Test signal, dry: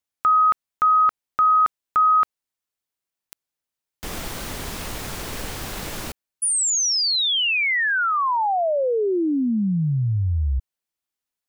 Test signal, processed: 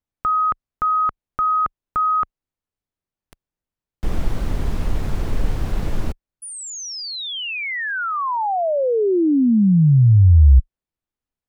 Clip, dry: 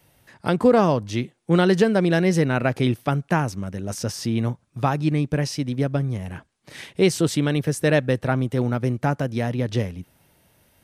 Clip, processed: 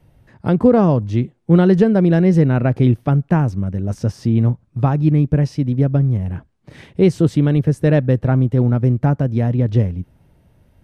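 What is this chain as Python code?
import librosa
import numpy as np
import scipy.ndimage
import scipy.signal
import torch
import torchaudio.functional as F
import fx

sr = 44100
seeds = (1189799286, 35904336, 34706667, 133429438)

y = fx.tilt_eq(x, sr, slope=-3.5)
y = y * librosa.db_to_amplitude(-1.0)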